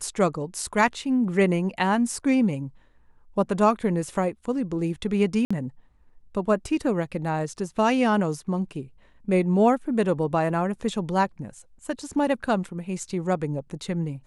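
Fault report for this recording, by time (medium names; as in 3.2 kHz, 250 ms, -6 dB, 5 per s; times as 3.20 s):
5.45–5.50 s: dropout 55 ms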